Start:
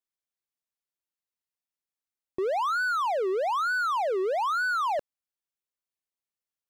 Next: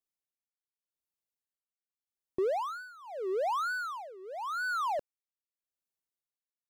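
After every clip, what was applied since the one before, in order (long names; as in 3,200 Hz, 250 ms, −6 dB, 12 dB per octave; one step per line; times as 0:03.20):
parametric band 2,100 Hz −6 dB 2.6 octaves
amplitude tremolo 0.84 Hz, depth 91%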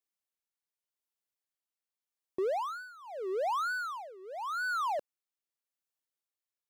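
low-shelf EQ 170 Hz −12 dB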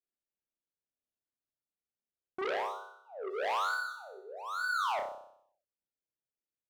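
adaptive Wiener filter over 41 samples
flutter between parallel walls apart 5.3 metres, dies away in 0.67 s
saturating transformer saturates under 1,900 Hz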